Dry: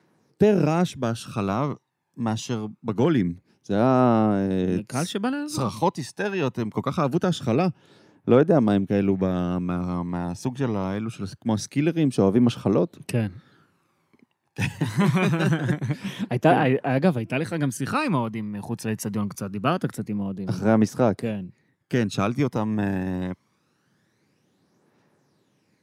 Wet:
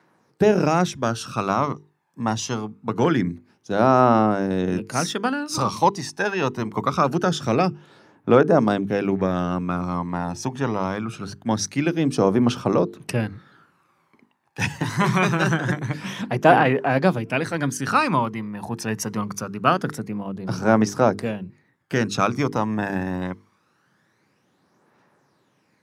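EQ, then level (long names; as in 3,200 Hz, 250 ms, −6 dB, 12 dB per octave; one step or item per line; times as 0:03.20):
parametric band 1,200 Hz +7.5 dB 1.9 octaves
mains-hum notches 50/100/150/200/250/300/350/400/450 Hz
dynamic equaliser 5,700 Hz, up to +8 dB, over −52 dBFS, Q 2.2
0.0 dB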